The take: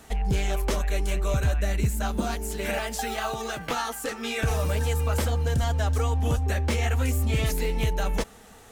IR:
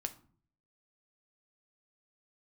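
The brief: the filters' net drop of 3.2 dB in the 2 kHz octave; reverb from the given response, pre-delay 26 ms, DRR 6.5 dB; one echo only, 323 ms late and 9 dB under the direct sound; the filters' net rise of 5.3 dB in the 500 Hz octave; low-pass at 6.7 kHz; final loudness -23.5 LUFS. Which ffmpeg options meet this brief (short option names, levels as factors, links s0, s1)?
-filter_complex "[0:a]lowpass=6700,equalizer=f=500:t=o:g=6.5,equalizer=f=2000:t=o:g=-4.5,aecho=1:1:323:0.355,asplit=2[s0][s1];[1:a]atrim=start_sample=2205,adelay=26[s2];[s1][s2]afir=irnorm=-1:irlink=0,volume=0.531[s3];[s0][s3]amix=inputs=2:normalize=0"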